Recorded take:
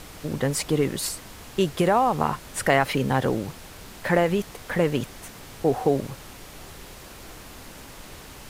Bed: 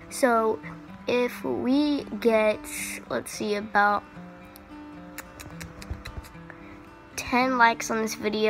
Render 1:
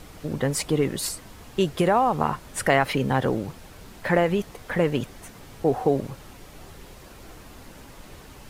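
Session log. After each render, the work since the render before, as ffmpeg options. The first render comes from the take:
ffmpeg -i in.wav -af "afftdn=noise_reduction=6:noise_floor=-44" out.wav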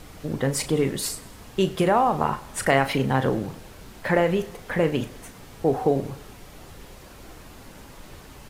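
ffmpeg -i in.wav -filter_complex "[0:a]asplit=2[link_01][link_02];[link_02]adelay=37,volume=-10.5dB[link_03];[link_01][link_03]amix=inputs=2:normalize=0,aecho=1:1:99|198|297|396:0.1|0.053|0.0281|0.0149" out.wav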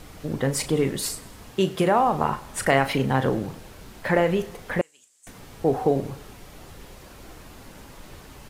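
ffmpeg -i in.wav -filter_complex "[0:a]asettb=1/sr,asplit=3[link_01][link_02][link_03];[link_01]atrim=end=1.534[link_04];[link_02]atrim=start=1.53:end=2,asetpts=PTS-STARTPTS,afade=type=in:duration=0.004:curve=qsin,afade=type=out:start_time=0.466:duration=0.004:curve=qsin,highpass=100[link_05];[link_03]atrim=start=1.996[link_06];[link_04][link_05]acrossfade=duration=0.004:curve1=hsin:curve2=qsin[link_07];[link_07][link_06]acrossfade=duration=0.004:curve1=qsin:curve2=hsin,asettb=1/sr,asplit=3[link_08][link_09][link_10];[link_08]atrim=end=4.814[link_11];[link_09]atrim=start=4.81:end=5.27,asetpts=PTS-STARTPTS,afade=type=in:duration=0.004:curve=qsin,afade=type=out:start_time=0.456:duration=0.004:curve=qsin,bandpass=frequency=7700:width_type=q:width=5.4[link_12];[link_10]atrim=start=5.266[link_13];[link_11][link_12]acrossfade=duration=0.004:curve1=hsin:curve2=qsin[link_14];[link_14][link_13]acrossfade=duration=0.004:curve1=qsin:curve2=hsin" out.wav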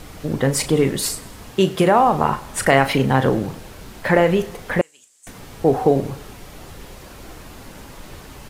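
ffmpeg -i in.wav -af "volume=5.5dB,alimiter=limit=-3dB:level=0:latency=1" out.wav

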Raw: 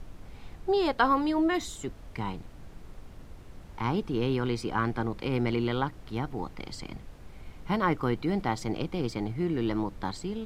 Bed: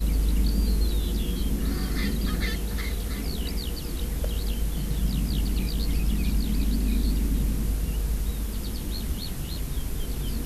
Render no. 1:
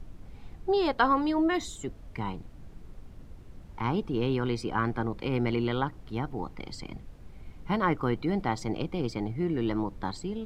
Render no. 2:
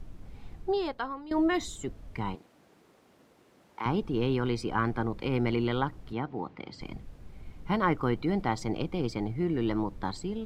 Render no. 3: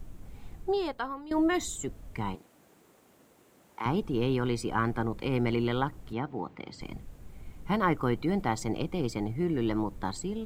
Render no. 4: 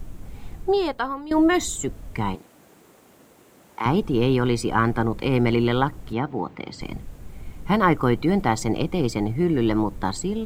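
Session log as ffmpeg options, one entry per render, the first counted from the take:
ffmpeg -i in.wav -af "afftdn=noise_reduction=6:noise_floor=-48" out.wav
ffmpeg -i in.wav -filter_complex "[0:a]asettb=1/sr,asplit=3[link_01][link_02][link_03];[link_01]atrim=end=2.354[link_04];[link_02]atrim=start=2.35:end=3.86,asetpts=PTS-STARTPTS,afade=type=in:duration=0.004:curve=qsin,afade=type=out:start_time=1.506:duration=0.004:curve=qsin,highpass=360[link_05];[link_03]atrim=start=3.856[link_06];[link_04][link_05]acrossfade=duration=0.004:curve1=hsin:curve2=qsin[link_07];[link_07][link_06]acrossfade=duration=0.004:curve1=qsin:curve2=hsin,asettb=1/sr,asplit=3[link_08][link_09][link_10];[link_08]atrim=end=6.134[link_11];[link_09]atrim=start=6.13:end=6.81,asetpts=PTS-STARTPTS,afade=type=in:duration=0.004:curve=qsin,afade=type=out:start_time=0.676:duration=0.004:curve=qsin,highpass=140,lowpass=3700[link_12];[link_10]atrim=start=6.806[link_13];[link_11][link_12]acrossfade=duration=0.004:curve1=hsin:curve2=qsin[link_14];[link_14][link_13]acrossfade=duration=0.004:curve1=qsin:curve2=hsin,asplit=2[link_15][link_16];[link_15]atrim=end=1.31,asetpts=PTS-STARTPTS,afade=type=out:start_time=0.61:duration=0.7:curve=qua:silence=0.149624[link_17];[link_16]atrim=start=1.31,asetpts=PTS-STARTPTS,afade=type=in:duration=0.004:curve=hsin:silence=0.149624[link_18];[link_17][link_18]concat=n=2:v=0:a=1" out.wav
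ffmpeg -i in.wav -af "aexciter=amount=1.6:drive=8.4:freq=6700" out.wav
ffmpeg -i in.wav -af "volume=8dB" out.wav

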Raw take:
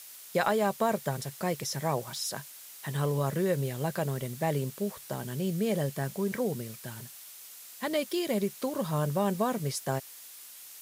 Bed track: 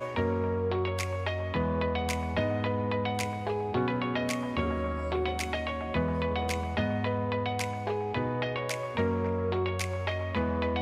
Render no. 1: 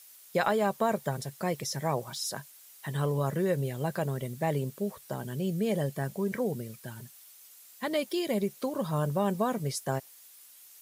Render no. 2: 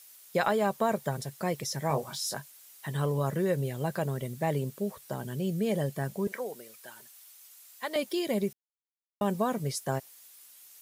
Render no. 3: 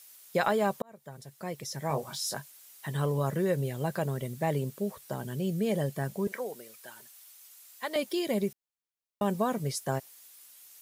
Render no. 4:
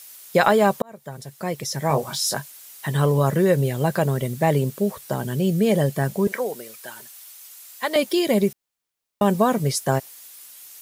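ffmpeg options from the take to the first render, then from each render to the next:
ffmpeg -i in.wav -af "afftdn=noise_reduction=8:noise_floor=-48" out.wav
ffmpeg -i in.wav -filter_complex "[0:a]asettb=1/sr,asplit=3[link_01][link_02][link_03];[link_01]atrim=end=1.884[link_04];[link_02]atrim=start=1.88:end=2.38,asetpts=PTS-STARTPTS,afade=type=in:duration=0.004:curve=qsin,afade=type=out:start_time=0.496:duration=0.004:curve=qsin,asplit=2[link_05][link_06];[link_06]adelay=21,volume=-5.5dB[link_07];[link_05][link_07]amix=inputs=2:normalize=0,atrim=end_sample=22050[link_08];[link_03]atrim=start=2.376[link_09];[link_04][link_08]acrossfade=duration=0.004:curve1=hsin:curve2=qsin[link_10];[link_10][link_09]acrossfade=duration=0.004:curve1=qsin:curve2=hsin,asettb=1/sr,asplit=3[link_11][link_12][link_13];[link_11]atrim=end=6.274[link_14];[link_12]atrim=start=6.27:end=7.96,asetpts=PTS-STARTPTS,afade=type=in:duration=0.004:curve=qsin,afade=type=out:start_time=1.686:duration=0.004:curve=qsin,highpass=550[link_15];[link_13]atrim=start=7.956[link_16];[link_14][link_15]acrossfade=duration=0.004:curve1=hsin:curve2=qsin[link_17];[link_17][link_16]acrossfade=duration=0.004:curve1=qsin:curve2=hsin,asplit=3[link_18][link_19][link_20];[link_18]atrim=end=8.53,asetpts=PTS-STARTPTS,afade=type=out:start_time=8.526:duration=0.004:curve=hsin[link_21];[link_19]atrim=start=8.53:end=9.21,asetpts=PTS-STARTPTS,volume=0[link_22];[link_20]atrim=start=9.21,asetpts=PTS-STARTPTS,afade=type=in:duration=0.004:curve=hsin[link_23];[link_21][link_22][link_23]concat=n=3:v=0:a=1" out.wav
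ffmpeg -i in.wav -filter_complex "[0:a]asplit=2[link_01][link_02];[link_01]atrim=end=0.82,asetpts=PTS-STARTPTS,afade=type=out:start_time=0.816:duration=0.004:curve=hsin[link_03];[link_02]atrim=start=0.82,asetpts=PTS-STARTPTS,afade=type=in:duration=1.39[link_04];[link_03][link_04]concat=n=2:v=0:a=1" out.wav
ffmpeg -i in.wav -af "volume=10dB" out.wav

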